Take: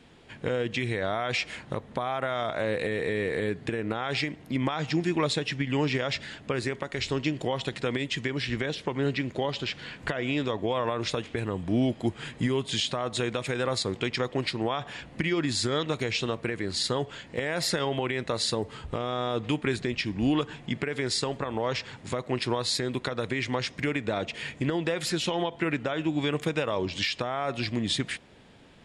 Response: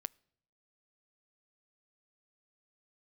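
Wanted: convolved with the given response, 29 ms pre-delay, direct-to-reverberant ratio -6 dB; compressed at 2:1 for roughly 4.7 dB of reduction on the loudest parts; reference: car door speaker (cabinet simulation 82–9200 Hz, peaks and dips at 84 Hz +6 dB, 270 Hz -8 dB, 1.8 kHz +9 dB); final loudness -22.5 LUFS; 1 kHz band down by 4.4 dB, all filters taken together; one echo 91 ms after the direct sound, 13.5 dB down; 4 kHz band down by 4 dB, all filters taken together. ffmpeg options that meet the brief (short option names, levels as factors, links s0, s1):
-filter_complex "[0:a]equalizer=f=1000:t=o:g=-6.5,equalizer=f=4000:t=o:g=-5,acompressor=threshold=0.0282:ratio=2,aecho=1:1:91:0.211,asplit=2[s0][s1];[1:a]atrim=start_sample=2205,adelay=29[s2];[s1][s2]afir=irnorm=-1:irlink=0,volume=2.82[s3];[s0][s3]amix=inputs=2:normalize=0,highpass=82,equalizer=f=84:t=q:w=4:g=6,equalizer=f=270:t=q:w=4:g=-8,equalizer=f=1800:t=q:w=4:g=9,lowpass=f=9200:w=0.5412,lowpass=f=9200:w=1.3066,volume=1.58"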